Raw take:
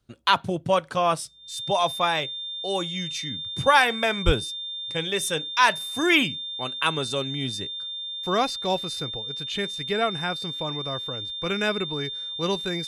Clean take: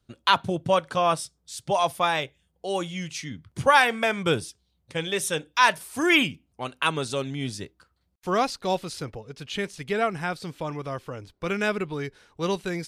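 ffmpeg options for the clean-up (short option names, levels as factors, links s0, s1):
-filter_complex "[0:a]bandreject=f=3600:w=30,asplit=3[s0][s1][s2];[s0]afade=t=out:st=4.25:d=0.02[s3];[s1]highpass=f=140:w=0.5412,highpass=f=140:w=1.3066,afade=t=in:st=4.25:d=0.02,afade=t=out:st=4.37:d=0.02[s4];[s2]afade=t=in:st=4.37:d=0.02[s5];[s3][s4][s5]amix=inputs=3:normalize=0"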